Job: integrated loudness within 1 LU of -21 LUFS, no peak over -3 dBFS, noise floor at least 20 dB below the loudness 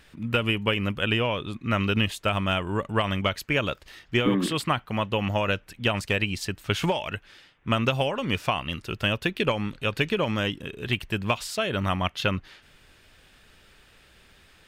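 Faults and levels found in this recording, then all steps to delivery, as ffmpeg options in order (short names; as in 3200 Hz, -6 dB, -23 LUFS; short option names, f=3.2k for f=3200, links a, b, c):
loudness -26.5 LUFS; peak -11.5 dBFS; loudness target -21.0 LUFS
-> -af "volume=5.5dB"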